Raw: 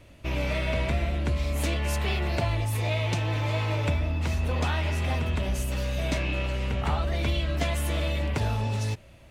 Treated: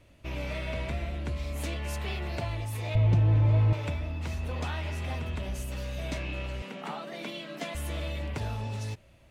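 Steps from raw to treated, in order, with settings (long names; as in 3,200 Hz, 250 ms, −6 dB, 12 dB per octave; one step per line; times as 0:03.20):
0:02.95–0:03.73: spectral tilt −4 dB per octave
0:06.62–0:07.75: Butterworth high-pass 160 Hz 72 dB per octave
level −6.5 dB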